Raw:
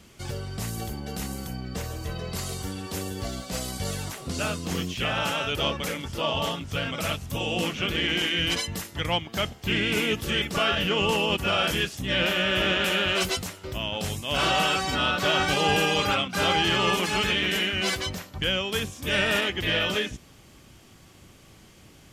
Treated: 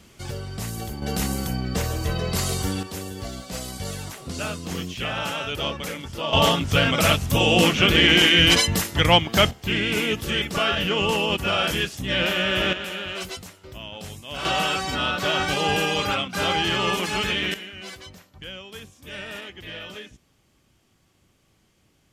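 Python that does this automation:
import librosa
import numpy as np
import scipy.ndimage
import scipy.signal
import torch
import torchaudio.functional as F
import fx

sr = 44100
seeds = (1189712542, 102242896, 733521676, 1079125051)

y = fx.gain(x, sr, db=fx.steps((0.0, 1.0), (1.02, 7.5), (2.83, -1.0), (6.33, 10.0), (9.51, 1.5), (12.73, -7.0), (14.45, 0.0), (17.54, -12.0)))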